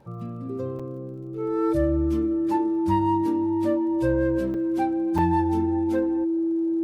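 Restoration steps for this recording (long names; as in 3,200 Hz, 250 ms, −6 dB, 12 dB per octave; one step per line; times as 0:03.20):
click removal
notch filter 330 Hz, Q 30
repair the gap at 0:00.79/0:04.54/0:05.18, 5.4 ms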